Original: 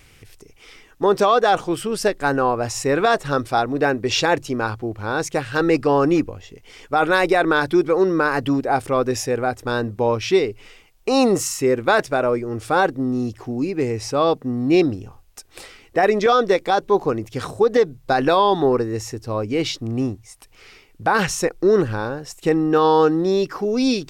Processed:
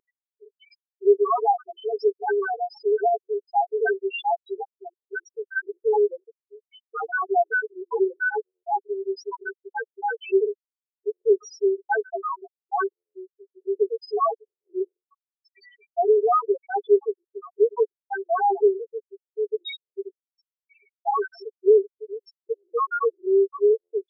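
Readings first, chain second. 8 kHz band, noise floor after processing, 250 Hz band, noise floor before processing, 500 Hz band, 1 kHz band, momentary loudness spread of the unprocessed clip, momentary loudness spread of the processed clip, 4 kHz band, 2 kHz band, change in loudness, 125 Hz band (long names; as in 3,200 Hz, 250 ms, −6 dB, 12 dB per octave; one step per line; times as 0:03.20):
below −20 dB, below −85 dBFS, below −10 dB, −51 dBFS, −3.5 dB, −5.0 dB, 9 LU, 16 LU, below −15 dB, −6.0 dB, −5.0 dB, below −40 dB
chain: lower of the sound and its delayed copy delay 2.6 ms
Chebyshev low-pass filter 5,100 Hz, order 4
de-essing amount 50%
comb filter 7.2 ms, depth 98%
automatic gain control
delay with a high-pass on its return 74 ms, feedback 39%, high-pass 2,800 Hz, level −5 dB
spectral peaks only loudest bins 1
linear-phase brick-wall high-pass 380 Hz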